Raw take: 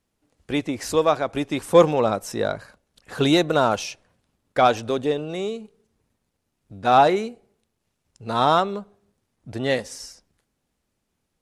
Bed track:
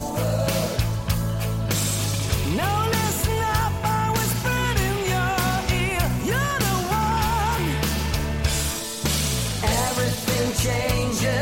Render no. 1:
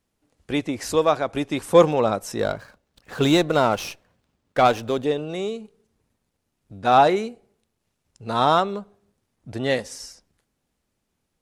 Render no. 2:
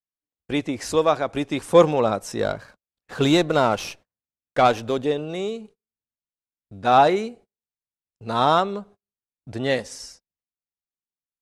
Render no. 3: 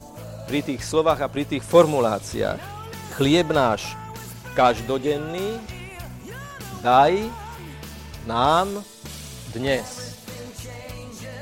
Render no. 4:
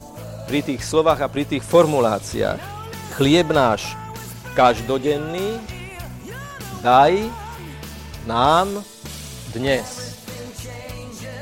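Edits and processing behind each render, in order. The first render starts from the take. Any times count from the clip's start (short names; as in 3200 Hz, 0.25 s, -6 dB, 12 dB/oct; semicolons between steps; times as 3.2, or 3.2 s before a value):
2.39–5.04 running maximum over 3 samples
LPF 11000 Hz 12 dB/oct; gate -46 dBFS, range -33 dB
add bed track -14 dB
gain +3 dB; limiter -3 dBFS, peak gain reduction 3 dB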